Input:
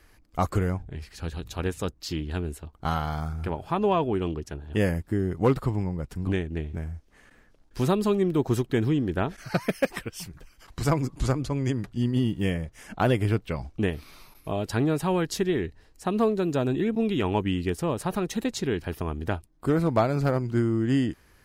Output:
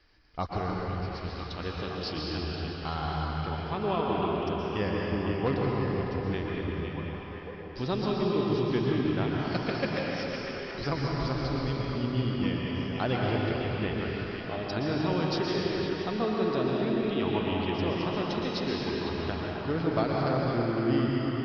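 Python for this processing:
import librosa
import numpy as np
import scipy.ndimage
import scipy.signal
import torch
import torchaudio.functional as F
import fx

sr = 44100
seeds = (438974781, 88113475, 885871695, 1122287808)

y = scipy.signal.sosfilt(scipy.signal.butter(16, 5300.0, 'lowpass', fs=sr, output='sos'), x)
y = fx.bass_treble(y, sr, bass_db=-2, treble_db=12)
y = fx.echo_stepped(y, sr, ms=506, hz=2500.0, octaves=-0.7, feedback_pct=70, wet_db=-4)
y = fx.rev_plate(y, sr, seeds[0], rt60_s=3.8, hf_ratio=0.75, predelay_ms=105, drr_db=-3.0)
y = y * librosa.db_to_amplitude(-7.0)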